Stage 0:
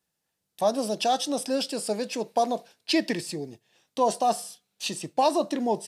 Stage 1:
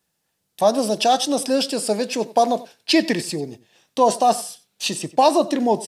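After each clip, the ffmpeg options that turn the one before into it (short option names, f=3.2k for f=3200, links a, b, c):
-filter_complex "[0:a]asplit=2[a][b];[b]adelay=93.29,volume=-18dB,highshelf=f=4k:g=-2.1[c];[a][c]amix=inputs=2:normalize=0,volume=7dB"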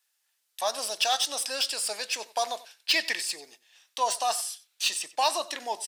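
-filter_complex "[0:a]highpass=1.4k,acrossover=split=3300[a][b];[b]asoftclip=type=tanh:threshold=-23dB[c];[a][c]amix=inputs=2:normalize=0"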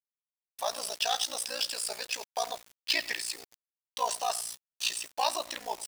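-af "acrusher=bits=6:mix=0:aa=0.000001,aeval=exprs='val(0)*sin(2*PI*29*n/s)':c=same,volume=-1dB"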